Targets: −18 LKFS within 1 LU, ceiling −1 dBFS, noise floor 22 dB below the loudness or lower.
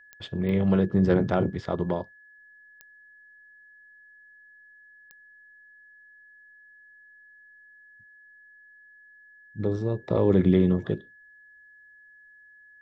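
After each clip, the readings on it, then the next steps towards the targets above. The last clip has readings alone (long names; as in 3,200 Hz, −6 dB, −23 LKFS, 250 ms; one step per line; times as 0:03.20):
number of clicks 4; interfering tone 1,700 Hz; level of the tone −51 dBFS; integrated loudness −25.0 LKFS; sample peak −9.0 dBFS; target loudness −18.0 LKFS
→ click removal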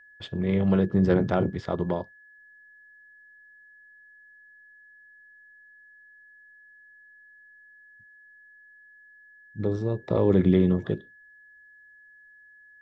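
number of clicks 0; interfering tone 1,700 Hz; level of the tone −51 dBFS
→ notch filter 1,700 Hz, Q 30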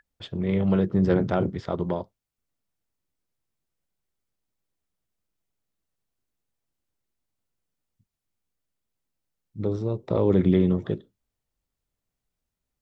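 interfering tone none found; integrated loudness −24.5 LKFS; sample peak −9.5 dBFS; target loudness −18.0 LKFS
→ level +6.5 dB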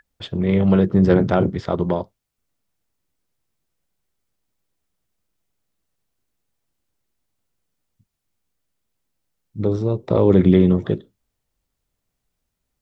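integrated loudness −18.0 LKFS; sample peak −3.0 dBFS; background noise floor −79 dBFS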